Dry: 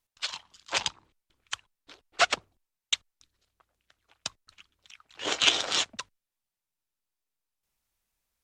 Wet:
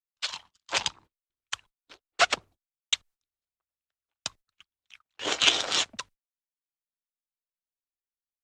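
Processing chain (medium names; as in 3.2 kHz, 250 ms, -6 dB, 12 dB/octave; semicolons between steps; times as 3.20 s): gate -51 dBFS, range -27 dB; trim +1 dB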